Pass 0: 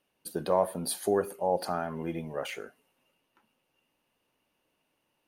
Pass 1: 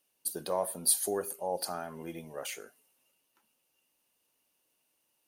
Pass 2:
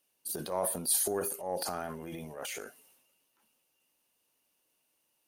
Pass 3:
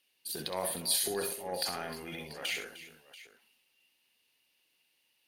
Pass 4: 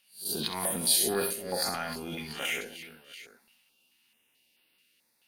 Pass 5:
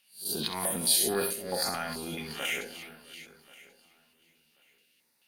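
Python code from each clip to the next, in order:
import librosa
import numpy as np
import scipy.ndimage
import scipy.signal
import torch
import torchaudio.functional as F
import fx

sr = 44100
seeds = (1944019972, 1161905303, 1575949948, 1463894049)

y1 = fx.bass_treble(x, sr, bass_db=-4, treble_db=15)
y1 = y1 * 10.0 ** (-6.0 / 20.0)
y2 = fx.transient(y1, sr, attack_db=-7, sustain_db=8)
y3 = fx.band_shelf(y2, sr, hz=2900.0, db=11.0, octaves=1.7)
y3 = fx.notch(y3, sr, hz=610.0, q=12.0)
y3 = fx.echo_multitap(y3, sr, ms=(65, 305, 686), db=(-8.5, -15.5, -17.0))
y3 = y3 * 10.0 ** (-3.0 / 20.0)
y4 = fx.spec_swells(y3, sr, rise_s=0.33)
y4 = fx.small_body(y4, sr, hz=(220.0, 1400.0), ring_ms=45, db=6)
y4 = fx.filter_held_notch(y4, sr, hz=4.6, low_hz=370.0, high_hz=6700.0)
y4 = y4 * 10.0 ** (4.0 / 20.0)
y5 = fx.echo_feedback(y4, sr, ms=1085, feedback_pct=20, wet_db=-21.5)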